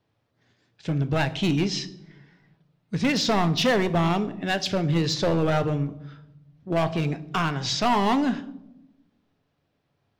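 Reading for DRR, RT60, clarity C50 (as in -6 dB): 10.0 dB, 0.90 s, 16.0 dB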